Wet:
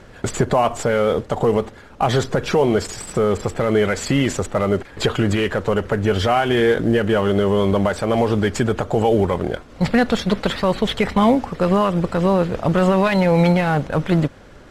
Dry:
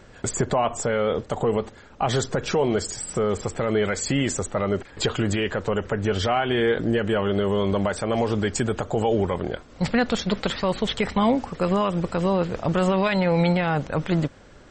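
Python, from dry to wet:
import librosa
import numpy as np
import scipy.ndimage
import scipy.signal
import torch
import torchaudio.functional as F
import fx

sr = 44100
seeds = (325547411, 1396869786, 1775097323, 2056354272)

y = fx.cvsd(x, sr, bps=64000)
y = fx.high_shelf(y, sr, hz=5900.0, db=-9.5)
y = F.gain(torch.from_numpy(y), 5.5).numpy()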